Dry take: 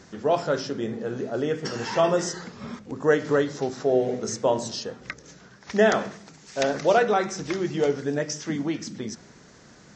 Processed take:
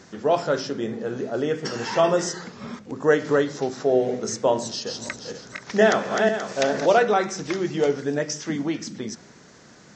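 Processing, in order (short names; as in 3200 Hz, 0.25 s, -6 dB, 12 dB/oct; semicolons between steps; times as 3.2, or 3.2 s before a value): 4.61–6.86 regenerating reverse delay 0.24 s, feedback 47%, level -3 dB; low shelf 69 Hz -11 dB; gain +2 dB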